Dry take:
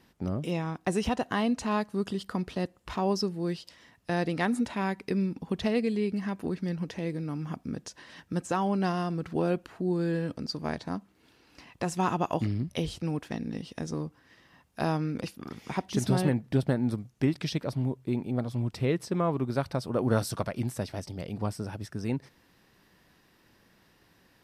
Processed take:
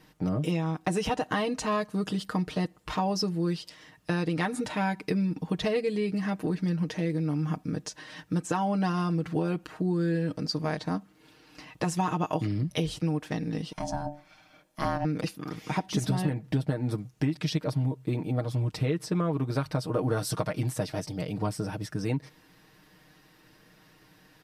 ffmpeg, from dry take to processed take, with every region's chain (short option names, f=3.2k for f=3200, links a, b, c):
-filter_complex "[0:a]asettb=1/sr,asplit=3[a][b][c];[a]atrim=end=13.724[d];[b]atrim=start=13.72:end=15.05,asetpts=PTS-STARTPTS,afade=t=in:d=0.004:c=qsin,afade=t=out:st=1.326:d=0.004:c=qsin,bandreject=f=50:t=h:w=6,bandreject=f=100:t=h:w=6,bandreject=f=150:t=h:w=6,bandreject=f=200:t=h:w=6,bandreject=f=250:t=h:w=6,bandreject=f=300:t=h:w=6,bandreject=f=350:t=h:w=6,bandreject=f=400:t=h:w=6,bandreject=f=450:t=h:w=6,aeval=exprs='val(0)*sin(2*PI*440*n/s)':c=same,aecho=1:1:1.2:0.34,atrim=end_sample=58653[e];[c]atrim=start=15.046[f];[d][e]acrossfade=d=0.004:c1=hsin:c2=qsin[g];[g][f]acrossfade=d=0.004:c1=qsin:c2=hsin,aecho=1:1:6.5:0.77,acompressor=threshold=-26dB:ratio=6,volume=2.5dB"